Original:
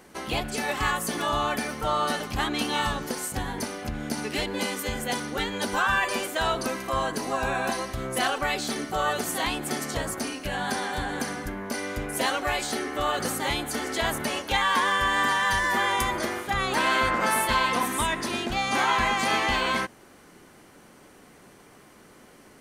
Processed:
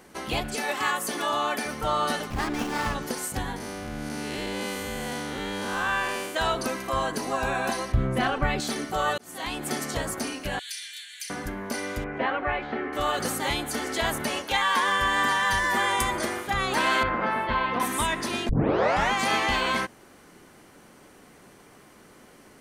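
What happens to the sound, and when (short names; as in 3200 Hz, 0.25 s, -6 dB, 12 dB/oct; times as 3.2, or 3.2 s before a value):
0.55–1.66 HPF 250 Hz
2.3–2.95 running maximum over 9 samples
3.56–6.35 time blur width 0.207 s
7.92–8.6 tone controls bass +12 dB, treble -14 dB
9.18–9.68 fade in
10.59–11.3 steep high-pass 2200 Hz
12.04–12.93 LPF 2400 Hz 24 dB/oct
14.45–14.88 low shelf 200 Hz -8 dB
15.75–16.37 bell 8500 Hz +6 dB 0.37 oct
17.03–17.8 air absorption 390 m
18.49 tape start 0.63 s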